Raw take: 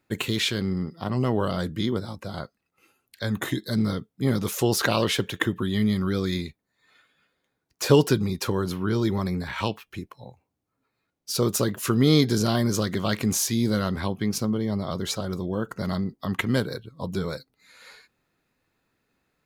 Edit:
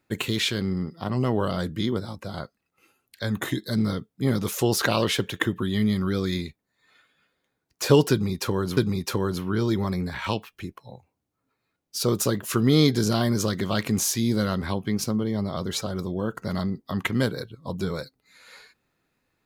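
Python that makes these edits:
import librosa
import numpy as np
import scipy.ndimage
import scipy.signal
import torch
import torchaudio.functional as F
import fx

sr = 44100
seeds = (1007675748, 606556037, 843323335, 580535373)

y = fx.edit(x, sr, fx.repeat(start_s=8.11, length_s=0.66, count=2), tone=tone)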